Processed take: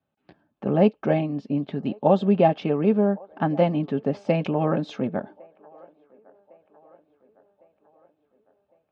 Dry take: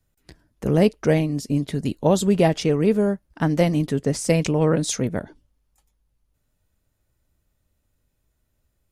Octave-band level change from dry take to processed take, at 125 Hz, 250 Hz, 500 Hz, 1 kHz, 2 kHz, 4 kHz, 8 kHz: -5.0 dB, -2.0 dB, -1.0 dB, +3.0 dB, -5.0 dB, -9.0 dB, under -30 dB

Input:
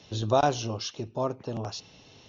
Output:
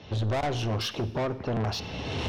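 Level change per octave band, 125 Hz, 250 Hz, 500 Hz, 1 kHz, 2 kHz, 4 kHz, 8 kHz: +4.5 dB, +2.0 dB, -2.5 dB, -4.0 dB, +4.0 dB, +3.0 dB, no reading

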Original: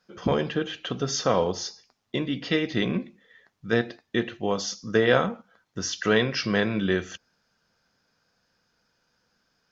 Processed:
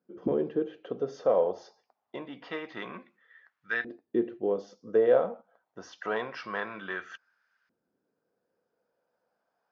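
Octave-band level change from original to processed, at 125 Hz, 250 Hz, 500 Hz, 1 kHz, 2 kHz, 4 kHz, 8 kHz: -17.0 dB, -9.0 dB, -2.0 dB, -6.0 dB, -7.0 dB, -18.0 dB, no reading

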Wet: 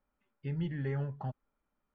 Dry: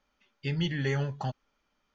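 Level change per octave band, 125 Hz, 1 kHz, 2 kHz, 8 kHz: -4.0 dB, -7.5 dB, -12.5 dB, no reading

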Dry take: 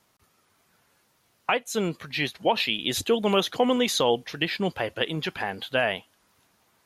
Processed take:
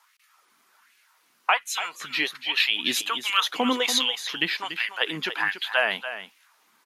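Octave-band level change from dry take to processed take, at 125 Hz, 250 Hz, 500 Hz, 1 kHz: -13.5 dB, -4.5 dB, -8.0 dB, 0.0 dB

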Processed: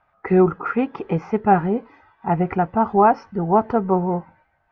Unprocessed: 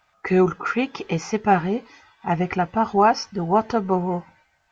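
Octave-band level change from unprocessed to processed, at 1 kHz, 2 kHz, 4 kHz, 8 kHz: +2.0 dB, -3.0 dB, under -15 dB, no reading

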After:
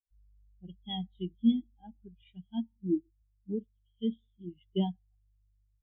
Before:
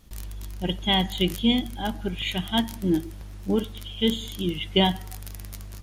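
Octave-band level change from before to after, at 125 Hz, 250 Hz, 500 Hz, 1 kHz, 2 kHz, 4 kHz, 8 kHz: -11.5 dB, -7.0 dB, -12.5 dB, -17.5 dB, under -30 dB, -20.0 dB, under -40 dB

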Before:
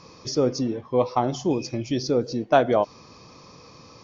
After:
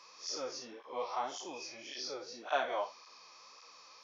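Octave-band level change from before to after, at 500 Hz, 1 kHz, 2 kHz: -17.5 dB, -11.5 dB, -7.5 dB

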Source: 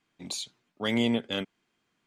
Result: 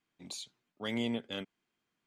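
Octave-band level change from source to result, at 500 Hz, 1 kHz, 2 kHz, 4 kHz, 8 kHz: -8.0 dB, -8.0 dB, -8.0 dB, -8.0 dB, -8.0 dB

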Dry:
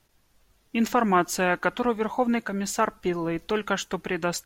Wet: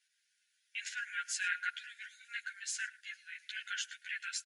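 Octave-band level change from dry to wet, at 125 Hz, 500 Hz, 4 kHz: under -40 dB, under -40 dB, -6.0 dB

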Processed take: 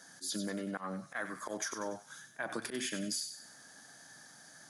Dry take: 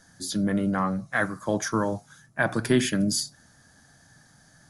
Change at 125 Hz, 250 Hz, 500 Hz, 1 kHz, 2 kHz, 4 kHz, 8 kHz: -19.0 dB, -15.0 dB, -13.0 dB, -12.5 dB, -12.0 dB, -8.0 dB, -7.0 dB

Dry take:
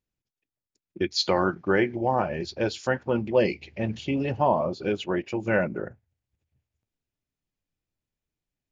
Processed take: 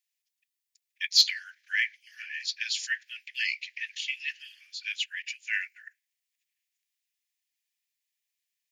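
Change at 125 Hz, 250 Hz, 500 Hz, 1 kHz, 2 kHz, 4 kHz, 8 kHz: under -40 dB, under -40 dB, under -40 dB, under -30 dB, +2.0 dB, +6.5 dB, no reading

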